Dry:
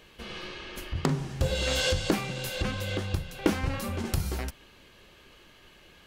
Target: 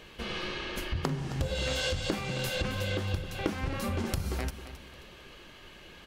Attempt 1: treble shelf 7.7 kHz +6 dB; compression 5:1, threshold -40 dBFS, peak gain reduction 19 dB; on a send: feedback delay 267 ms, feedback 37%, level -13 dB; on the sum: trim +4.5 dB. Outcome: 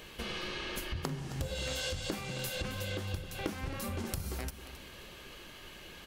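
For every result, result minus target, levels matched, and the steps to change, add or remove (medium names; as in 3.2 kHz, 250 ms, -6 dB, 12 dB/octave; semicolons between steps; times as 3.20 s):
compression: peak gain reduction +5.5 dB; 8 kHz band +4.5 dB
change: compression 5:1, threshold -33 dBFS, peak gain reduction 13.5 dB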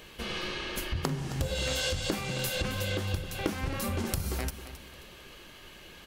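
8 kHz band +4.5 dB
change: treble shelf 7.7 kHz -5.5 dB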